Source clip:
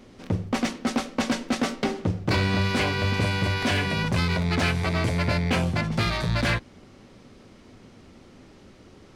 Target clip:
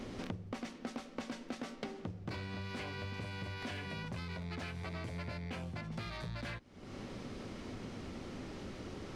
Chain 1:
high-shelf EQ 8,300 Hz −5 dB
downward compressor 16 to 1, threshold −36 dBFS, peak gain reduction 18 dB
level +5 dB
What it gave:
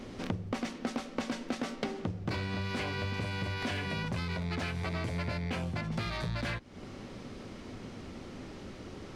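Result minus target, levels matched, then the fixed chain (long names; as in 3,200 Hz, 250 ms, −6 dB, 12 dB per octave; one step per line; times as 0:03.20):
downward compressor: peak gain reduction −7.5 dB
high-shelf EQ 8,300 Hz −5 dB
downward compressor 16 to 1, threshold −44 dBFS, peak gain reduction 25.5 dB
level +5 dB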